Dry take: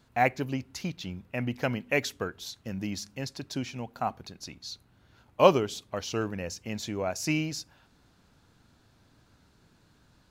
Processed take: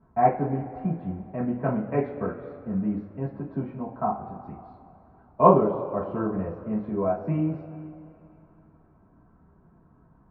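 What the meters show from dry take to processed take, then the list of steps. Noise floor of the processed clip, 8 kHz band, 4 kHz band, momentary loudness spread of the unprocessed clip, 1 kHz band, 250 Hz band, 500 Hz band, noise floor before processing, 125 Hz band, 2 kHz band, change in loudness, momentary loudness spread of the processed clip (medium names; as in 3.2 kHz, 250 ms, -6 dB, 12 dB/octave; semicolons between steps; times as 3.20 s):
-59 dBFS, under -40 dB, under -30 dB, 15 LU, +6.0 dB, +6.0 dB, +3.5 dB, -64 dBFS, +5.5 dB, -10.5 dB, +4.0 dB, 16 LU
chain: low-pass 1.2 kHz 24 dB/octave; two-slope reverb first 0.28 s, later 2.8 s, from -19 dB, DRR -8 dB; trim -3 dB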